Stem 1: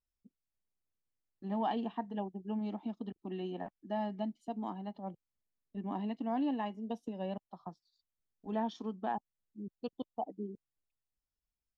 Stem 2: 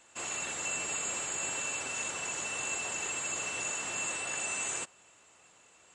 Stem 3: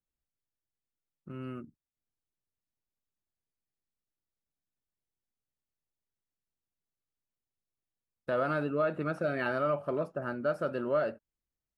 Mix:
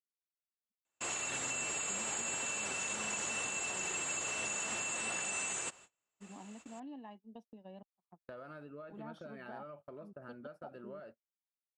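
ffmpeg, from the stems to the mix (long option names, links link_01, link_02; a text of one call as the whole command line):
ffmpeg -i stem1.wav -i stem2.wav -i stem3.wav -filter_complex "[0:a]acompressor=threshold=-41dB:ratio=1.5,adelay=450,volume=-10.5dB[link_01];[1:a]adelay=850,volume=1.5dB[link_02];[2:a]acompressor=threshold=-35dB:ratio=12,volume=-10.5dB[link_03];[link_01][link_02][link_03]amix=inputs=3:normalize=0,agate=range=-31dB:threshold=-53dB:ratio=16:detection=peak,alimiter=level_in=4dB:limit=-24dB:level=0:latency=1:release=132,volume=-4dB" out.wav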